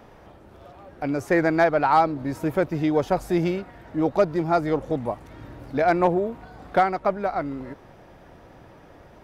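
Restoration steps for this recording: clip repair -9 dBFS

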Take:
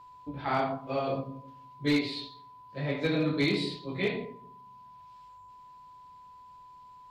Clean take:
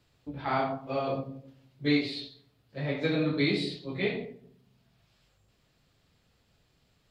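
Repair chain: clip repair -19.5 dBFS; band-stop 1 kHz, Q 30

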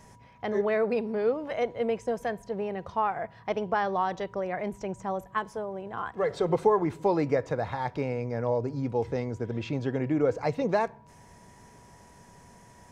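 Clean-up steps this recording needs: band-stop 970 Hz, Q 30

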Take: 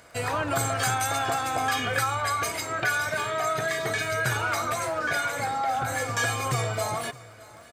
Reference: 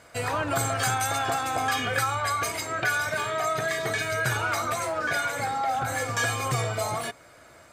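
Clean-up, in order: de-click; inverse comb 614 ms -20.5 dB

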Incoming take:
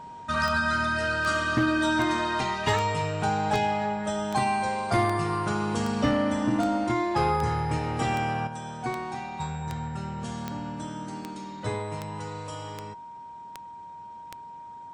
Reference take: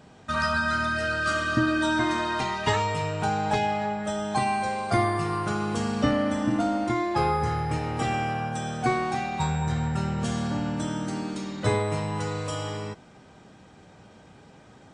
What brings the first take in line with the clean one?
clip repair -17 dBFS; de-click; band-stop 940 Hz, Q 30; gain correction +7 dB, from 8.47 s

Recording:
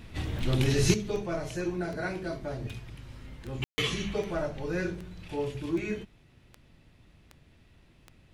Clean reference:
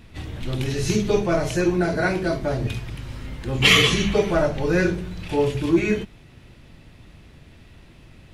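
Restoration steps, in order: de-click; room tone fill 3.64–3.78 s; trim 0 dB, from 0.94 s +11.5 dB

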